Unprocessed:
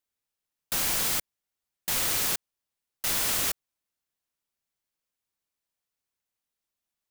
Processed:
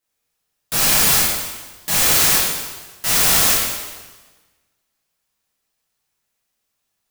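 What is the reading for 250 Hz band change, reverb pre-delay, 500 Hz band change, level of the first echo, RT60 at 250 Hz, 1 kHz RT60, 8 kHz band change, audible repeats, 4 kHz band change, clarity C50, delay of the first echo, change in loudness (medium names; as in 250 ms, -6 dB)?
+12.5 dB, 4 ms, +12.5 dB, no echo, 1.3 s, 1.3 s, +12.5 dB, no echo, +12.5 dB, -1.0 dB, no echo, +11.5 dB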